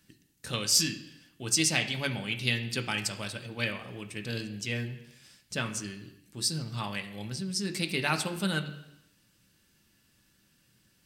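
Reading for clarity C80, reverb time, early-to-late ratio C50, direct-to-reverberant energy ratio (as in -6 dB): 13.5 dB, 0.85 s, 11.0 dB, 4.0 dB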